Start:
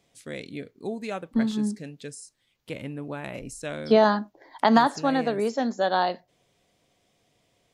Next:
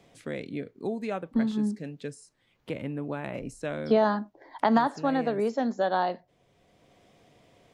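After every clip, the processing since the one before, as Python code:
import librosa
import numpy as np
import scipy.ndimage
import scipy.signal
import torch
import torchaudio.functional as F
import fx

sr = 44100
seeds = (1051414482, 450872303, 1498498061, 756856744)

y = fx.high_shelf(x, sr, hz=3200.0, db=-9.5)
y = fx.band_squash(y, sr, depth_pct=40)
y = F.gain(torch.from_numpy(y), -1.5).numpy()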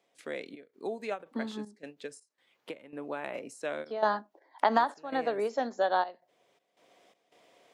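y = scipy.signal.sosfilt(scipy.signal.butter(2, 410.0, 'highpass', fs=sr, output='sos'), x)
y = fx.step_gate(y, sr, bpm=82, pattern='.xx.xxxxx.xx', floor_db=-12.0, edge_ms=4.5)
y = fx.end_taper(y, sr, db_per_s=310.0)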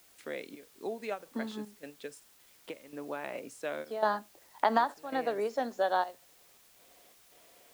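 y = fx.quant_dither(x, sr, seeds[0], bits=10, dither='triangular')
y = F.gain(torch.from_numpy(y), -1.5).numpy()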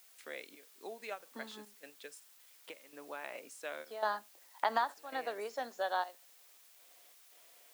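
y = fx.highpass(x, sr, hz=980.0, slope=6)
y = fx.high_shelf(y, sr, hz=12000.0, db=3.0)
y = F.gain(torch.from_numpy(y), -1.5).numpy()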